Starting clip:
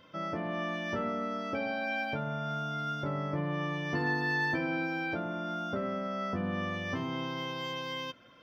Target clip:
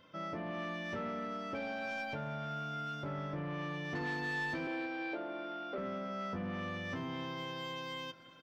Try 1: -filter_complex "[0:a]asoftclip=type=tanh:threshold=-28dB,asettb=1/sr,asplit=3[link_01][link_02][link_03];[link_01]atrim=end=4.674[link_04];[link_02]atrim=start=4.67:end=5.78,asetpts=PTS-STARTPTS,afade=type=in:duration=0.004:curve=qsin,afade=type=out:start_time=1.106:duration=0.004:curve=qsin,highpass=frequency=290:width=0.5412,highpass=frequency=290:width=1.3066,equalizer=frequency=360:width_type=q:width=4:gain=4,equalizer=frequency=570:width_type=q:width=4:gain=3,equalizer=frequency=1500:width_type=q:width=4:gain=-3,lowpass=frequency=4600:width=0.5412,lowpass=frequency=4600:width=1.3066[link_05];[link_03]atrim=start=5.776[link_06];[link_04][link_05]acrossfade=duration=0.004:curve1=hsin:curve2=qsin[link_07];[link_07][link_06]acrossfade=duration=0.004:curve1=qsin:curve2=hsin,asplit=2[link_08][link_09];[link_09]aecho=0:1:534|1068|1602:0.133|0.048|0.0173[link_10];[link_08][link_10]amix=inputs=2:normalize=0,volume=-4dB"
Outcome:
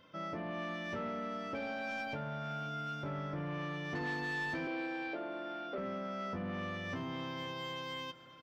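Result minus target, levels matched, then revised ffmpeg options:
echo 218 ms late
-filter_complex "[0:a]asoftclip=type=tanh:threshold=-28dB,asettb=1/sr,asplit=3[link_01][link_02][link_03];[link_01]atrim=end=4.674[link_04];[link_02]atrim=start=4.67:end=5.78,asetpts=PTS-STARTPTS,afade=type=in:duration=0.004:curve=qsin,afade=type=out:start_time=1.106:duration=0.004:curve=qsin,highpass=frequency=290:width=0.5412,highpass=frequency=290:width=1.3066,equalizer=frequency=360:width_type=q:width=4:gain=4,equalizer=frequency=570:width_type=q:width=4:gain=3,equalizer=frequency=1500:width_type=q:width=4:gain=-3,lowpass=frequency=4600:width=0.5412,lowpass=frequency=4600:width=1.3066[link_05];[link_03]atrim=start=5.776[link_06];[link_04][link_05]acrossfade=duration=0.004:curve1=hsin:curve2=qsin[link_07];[link_07][link_06]acrossfade=duration=0.004:curve1=qsin:curve2=hsin,asplit=2[link_08][link_09];[link_09]aecho=0:1:316|632|948:0.133|0.048|0.0173[link_10];[link_08][link_10]amix=inputs=2:normalize=0,volume=-4dB"

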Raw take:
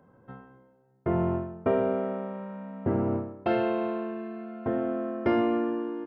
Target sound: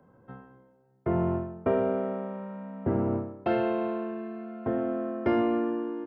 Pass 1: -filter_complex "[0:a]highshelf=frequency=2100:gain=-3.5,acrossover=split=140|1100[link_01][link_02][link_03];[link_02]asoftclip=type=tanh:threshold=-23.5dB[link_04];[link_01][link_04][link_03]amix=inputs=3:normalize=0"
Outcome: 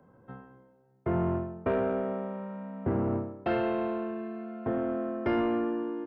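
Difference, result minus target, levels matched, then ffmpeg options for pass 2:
soft clipping: distortion +17 dB
-filter_complex "[0:a]highshelf=frequency=2100:gain=-3.5,acrossover=split=140|1100[link_01][link_02][link_03];[link_02]asoftclip=type=tanh:threshold=-12.5dB[link_04];[link_01][link_04][link_03]amix=inputs=3:normalize=0"

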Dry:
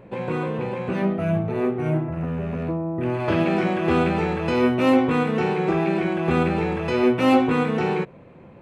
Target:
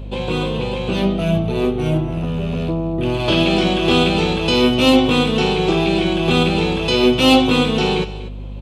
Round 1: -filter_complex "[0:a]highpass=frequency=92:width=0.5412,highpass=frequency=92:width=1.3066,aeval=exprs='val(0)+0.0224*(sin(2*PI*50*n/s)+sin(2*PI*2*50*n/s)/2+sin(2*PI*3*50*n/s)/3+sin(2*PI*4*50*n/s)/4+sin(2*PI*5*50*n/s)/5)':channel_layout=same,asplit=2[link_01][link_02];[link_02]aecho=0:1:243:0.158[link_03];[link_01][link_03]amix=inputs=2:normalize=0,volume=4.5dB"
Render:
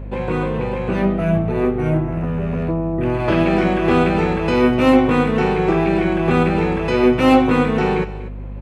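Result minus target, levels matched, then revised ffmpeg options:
4,000 Hz band −13.5 dB
-filter_complex "[0:a]highpass=frequency=92:width=0.5412,highpass=frequency=92:width=1.3066,highshelf=frequency=2500:width_type=q:width=3:gain=9.5,aeval=exprs='val(0)+0.0224*(sin(2*PI*50*n/s)+sin(2*PI*2*50*n/s)/2+sin(2*PI*3*50*n/s)/3+sin(2*PI*4*50*n/s)/4+sin(2*PI*5*50*n/s)/5)':channel_layout=same,asplit=2[link_01][link_02];[link_02]aecho=0:1:243:0.158[link_03];[link_01][link_03]amix=inputs=2:normalize=0,volume=4.5dB"

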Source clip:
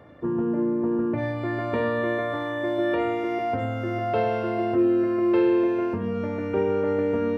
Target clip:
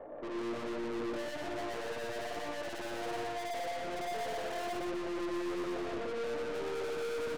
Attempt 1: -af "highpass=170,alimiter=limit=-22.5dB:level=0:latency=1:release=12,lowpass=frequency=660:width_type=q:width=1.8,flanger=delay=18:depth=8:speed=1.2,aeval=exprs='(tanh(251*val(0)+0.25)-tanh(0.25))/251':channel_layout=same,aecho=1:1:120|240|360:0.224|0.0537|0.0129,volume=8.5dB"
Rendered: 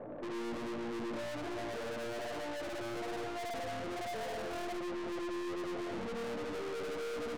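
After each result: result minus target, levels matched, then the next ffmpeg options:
echo-to-direct −9.5 dB; 125 Hz band +3.5 dB
-af "highpass=170,alimiter=limit=-22.5dB:level=0:latency=1:release=12,lowpass=frequency=660:width_type=q:width=1.8,flanger=delay=18:depth=8:speed=1.2,aeval=exprs='(tanh(251*val(0)+0.25)-tanh(0.25))/251':channel_layout=same,aecho=1:1:120|240|360:0.668|0.16|0.0385,volume=8.5dB"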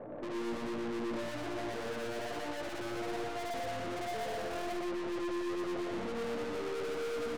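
125 Hz band +3.5 dB
-af "highpass=460,alimiter=limit=-22.5dB:level=0:latency=1:release=12,lowpass=frequency=660:width_type=q:width=1.8,flanger=delay=18:depth=8:speed=1.2,aeval=exprs='(tanh(251*val(0)+0.25)-tanh(0.25))/251':channel_layout=same,aecho=1:1:120|240|360:0.668|0.16|0.0385,volume=8.5dB"

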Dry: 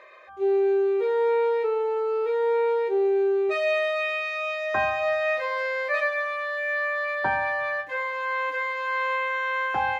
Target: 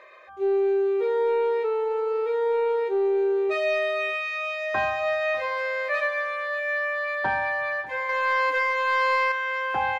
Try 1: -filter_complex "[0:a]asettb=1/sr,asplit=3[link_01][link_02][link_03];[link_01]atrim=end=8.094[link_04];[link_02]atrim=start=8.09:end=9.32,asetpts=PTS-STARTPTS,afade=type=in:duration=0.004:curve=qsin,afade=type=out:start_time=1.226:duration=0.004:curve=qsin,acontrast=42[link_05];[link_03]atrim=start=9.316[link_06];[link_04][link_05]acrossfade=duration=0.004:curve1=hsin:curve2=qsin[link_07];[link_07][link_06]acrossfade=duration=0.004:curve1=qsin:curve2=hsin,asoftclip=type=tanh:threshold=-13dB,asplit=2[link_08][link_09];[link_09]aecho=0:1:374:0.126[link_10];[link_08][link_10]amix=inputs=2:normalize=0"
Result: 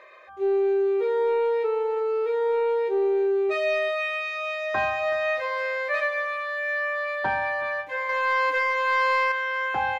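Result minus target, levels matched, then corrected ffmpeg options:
echo 222 ms early
-filter_complex "[0:a]asettb=1/sr,asplit=3[link_01][link_02][link_03];[link_01]atrim=end=8.094[link_04];[link_02]atrim=start=8.09:end=9.32,asetpts=PTS-STARTPTS,afade=type=in:duration=0.004:curve=qsin,afade=type=out:start_time=1.226:duration=0.004:curve=qsin,acontrast=42[link_05];[link_03]atrim=start=9.316[link_06];[link_04][link_05]acrossfade=duration=0.004:curve1=hsin:curve2=qsin[link_07];[link_07][link_06]acrossfade=duration=0.004:curve1=qsin:curve2=hsin,asoftclip=type=tanh:threshold=-13dB,asplit=2[link_08][link_09];[link_09]aecho=0:1:596:0.126[link_10];[link_08][link_10]amix=inputs=2:normalize=0"

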